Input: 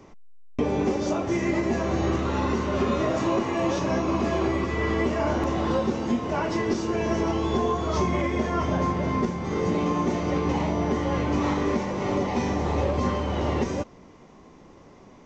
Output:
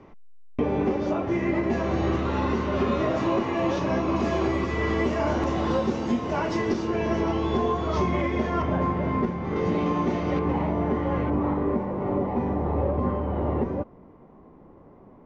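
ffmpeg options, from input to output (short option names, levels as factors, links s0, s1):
-af "asetnsamples=n=441:p=0,asendcmd='1.7 lowpass f 4200;4.16 lowpass f 7000;6.72 lowpass f 4100;8.62 lowpass f 2400;9.56 lowpass f 3700;10.39 lowpass f 1900;11.3 lowpass f 1100',lowpass=2700"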